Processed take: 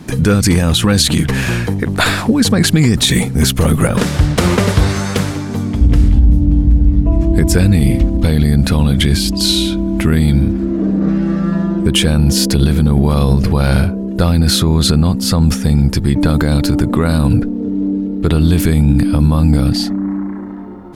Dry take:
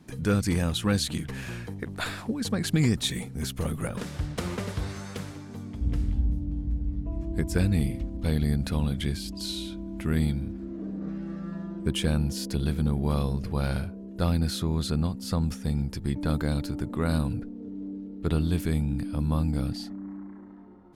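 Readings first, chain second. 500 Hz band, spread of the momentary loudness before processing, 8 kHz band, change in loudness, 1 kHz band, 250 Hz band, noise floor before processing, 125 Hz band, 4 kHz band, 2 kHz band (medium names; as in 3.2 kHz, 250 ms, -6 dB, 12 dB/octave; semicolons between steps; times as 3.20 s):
+15.0 dB, 11 LU, +18.0 dB, +16.0 dB, +15.5 dB, +16.0 dB, -41 dBFS, +15.5 dB, +18.0 dB, +16.5 dB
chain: loudness maximiser +21 dB; trim -1 dB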